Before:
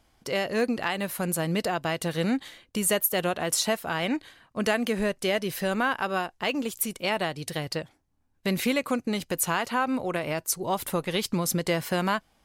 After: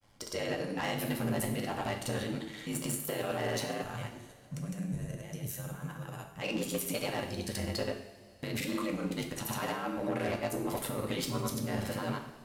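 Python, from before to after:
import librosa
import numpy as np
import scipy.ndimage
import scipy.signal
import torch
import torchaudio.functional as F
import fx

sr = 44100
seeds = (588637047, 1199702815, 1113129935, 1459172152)

y = x * np.sin(2.0 * np.pi * 51.0 * np.arange(len(x)) / sr)
y = fx.over_compress(y, sr, threshold_db=-31.0, ratio=-0.5)
y = fx.granulator(y, sr, seeds[0], grain_ms=100.0, per_s=20.0, spray_ms=100.0, spread_st=0)
y = fx.spec_box(y, sr, start_s=3.82, length_s=2.59, low_hz=210.0, high_hz=5500.0, gain_db=-14)
y = 10.0 ** (-28.0 / 20.0) * np.tanh(y / 10.0 ** (-28.0 / 20.0))
y = fx.rev_double_slope(y, sr, seeds[1], early_s=0.68, late_s=3.5, knee_db=-18, drr_db=2.0)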